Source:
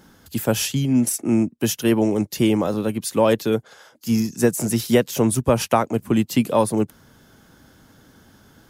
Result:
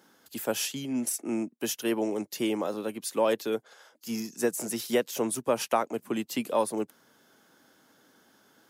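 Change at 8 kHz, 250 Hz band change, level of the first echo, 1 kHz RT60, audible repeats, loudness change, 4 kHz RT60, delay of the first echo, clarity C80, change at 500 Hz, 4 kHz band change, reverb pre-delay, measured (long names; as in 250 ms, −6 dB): −7.0 dB, −12.0 dB, no echo audible, no reverb audible, no echo audible, −9.5 dB, no reverb audible, no echo audible, no reverb audible, −8.0 dB, −7.0 dB, no reverb audible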